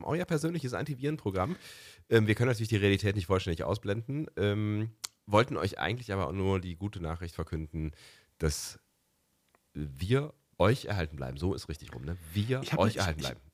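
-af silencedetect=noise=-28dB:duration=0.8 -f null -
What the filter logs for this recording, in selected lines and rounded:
silence_start: 8.65
silence_end: 9.77 | silence_duration: 1.13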